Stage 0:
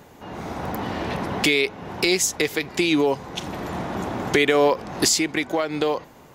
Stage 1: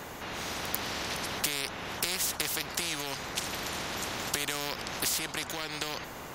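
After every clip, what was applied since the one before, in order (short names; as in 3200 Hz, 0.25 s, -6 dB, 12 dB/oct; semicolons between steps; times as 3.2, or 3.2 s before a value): spectral compressor 4:1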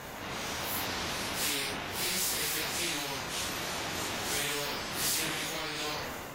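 phase scrambler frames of 0.2 s; sustainer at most 21 dB/s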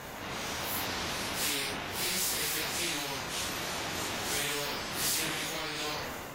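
nothing audible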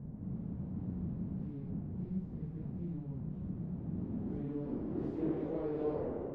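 low-pass sweep 180 Hz -> 430 Hz, 3.76–5.64; gain +1.5 dB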